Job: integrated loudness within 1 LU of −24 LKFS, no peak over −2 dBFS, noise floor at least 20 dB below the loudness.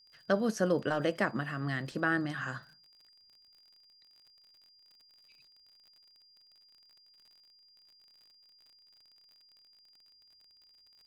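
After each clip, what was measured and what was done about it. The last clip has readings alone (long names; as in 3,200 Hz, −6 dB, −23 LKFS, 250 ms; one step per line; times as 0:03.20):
crackle rate 43 per second; interfering tone 4,800 Hz; level of the tone −60 dBFS; integrated loudness −32.5 LKFS; sample peak −14.0 dBFS; target loudness −24.0 LKFS
→ click removal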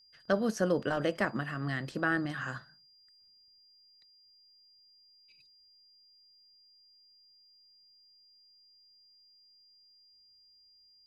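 crackle rate 0 per second; interfering tone 4,800 Hz; level of the tone −60 dBFS
→ notch filter 4,800 Hz, Q 30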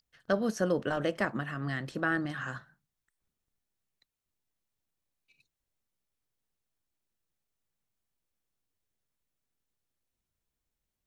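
interfering tone none found; integrated loudness −32.0 LKFS; sample peak −14.0 dBFS; target loudness −24.0 LKFS
→ level +8 dB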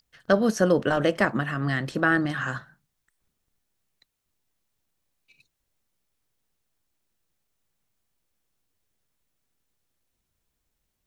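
integrated loudness −24.0 LKFS; sample peak −6.0 dBFS; background noise floor −80 dBFS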